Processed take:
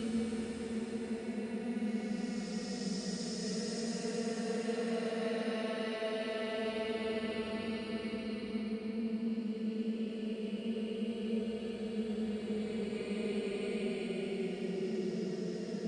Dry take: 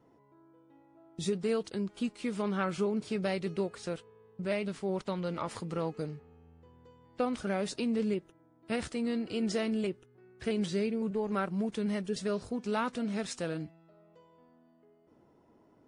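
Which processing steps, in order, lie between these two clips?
reverse delay 0.365 s, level -5 dB; darkening echo 0.405 s, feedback 72%, low-pass 3000 Hz, level -6 dB; Paulstretch 30×, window 0.10 s, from 9.4; gain -6.5 dB

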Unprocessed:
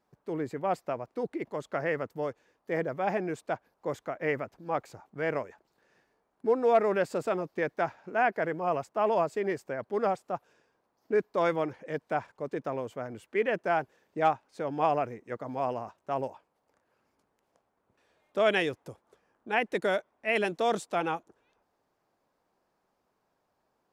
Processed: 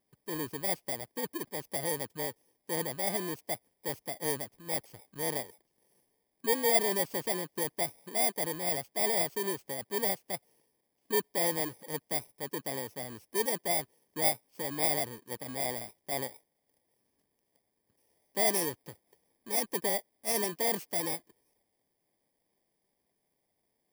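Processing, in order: FFT order left unsorted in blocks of 32 samples; gain -3 dB

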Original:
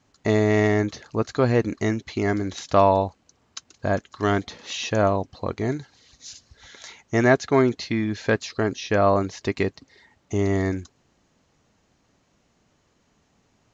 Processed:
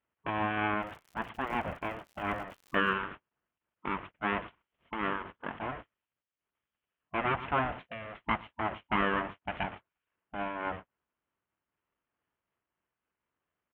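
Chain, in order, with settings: zero-crossing step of -28 dBFS; Bessel high-pass 500 Hz, order 4; tilt -4.5 dB/oct; feedback echo 0.115 s, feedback 26%, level -17 dB; full-wave rectifier; notch 790 Hz, Q 12; gate -30 dBFS, range -41 dB; elliptic low-pass 3100 Hz, stop band 40 dB; spectral gate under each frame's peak -15 dB weak; 0.81–2.92 crackle 150/s -42 dBFS; noise-modulated level, depth 60%

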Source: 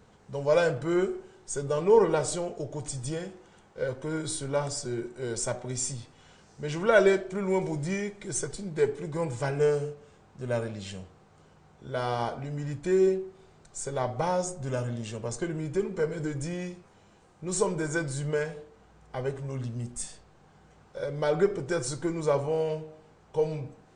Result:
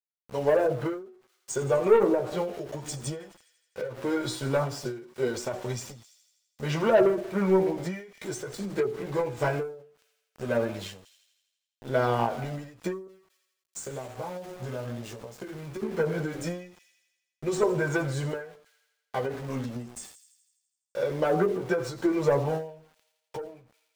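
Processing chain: HPF 240 Hz 6 dB/oct; treble ducked by the level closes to 750 Hz, closed at -22 dBFS; high shelf 3000 Hz -4 dB; sample leveller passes 2; 13.07–15.82 compressor 8:1, threshold -34 dBFS, peak gain reduction 16 dB; chorus voices 2, 0.17 Hz, delay 12 ms, depth 4.4 ms; sample gate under -46.5 dBFS; thin delay 83 ms, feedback 63%, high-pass 3400 Hz, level -14 dB; ending taper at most 100 dB/s; gain +3 dB

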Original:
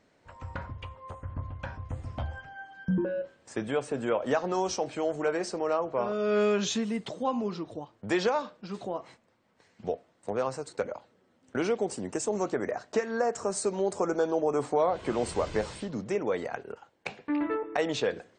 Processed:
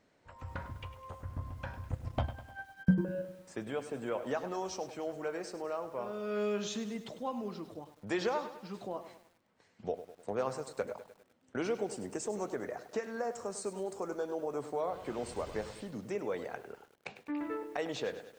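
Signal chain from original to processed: vocal rider within 4 dB 2 s; 1.92–3.17 transient shaper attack +11 dB, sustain -10 dB; lo-fi delay 0.101 s, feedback 55%, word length 8-bit, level -12 dB; gain -8 dB

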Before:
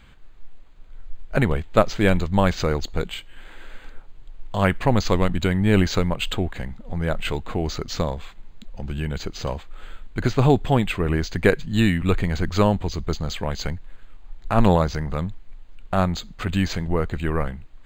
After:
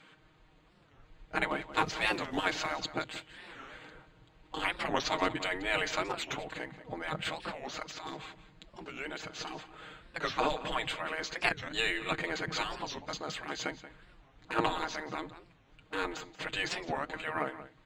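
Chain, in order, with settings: 1.72–2.76 G.711 law mismatch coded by mu; spectral gate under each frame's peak -15 dB weak; comb 6.4 ms, depth 73%; 7.68–8.17 negative-ratio compressor -38 dBFS, ratio -1; air absorption 53 m; outdoor echo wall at 31 m, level -14 dB; record warp 45 rpm, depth 250 cents; gain -3 dB

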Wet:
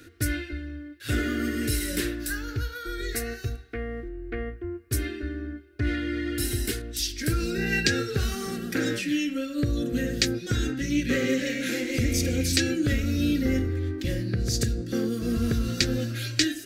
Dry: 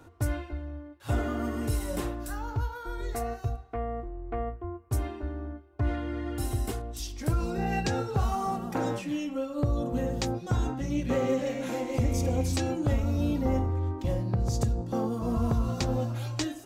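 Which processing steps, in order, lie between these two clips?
EQ curve 160 Hz 0 dB, 320 Hz +6 dB, 460 Hz +2 dB, 940 Hz -21 dB, 1600 Hz +13 dB, 3100 Hz +10 dB, 4400 Hz +14 dB, 7000 Hz +8 dB, 11000 Hz +11 dB

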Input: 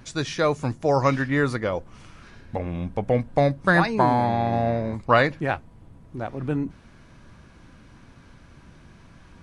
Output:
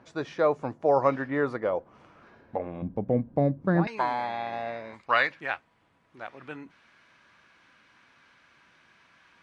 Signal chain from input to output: band-pass 650 Hz, Q 0.9, from 2.82 s 250 Hz, from 3.87 s 2200 Hz

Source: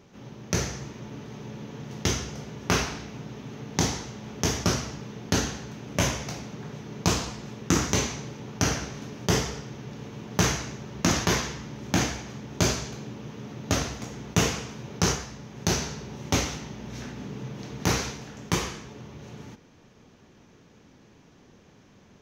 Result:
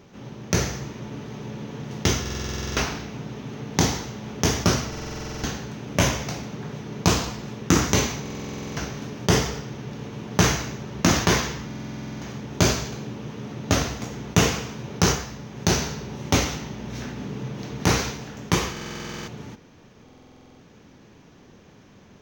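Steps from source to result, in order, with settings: stuck buffer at 2.21/4.88/8.21/11.66/18.72/20.04, samples 2048, times 11; decimation joined by straight lines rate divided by 2×; gain +4.5 dB

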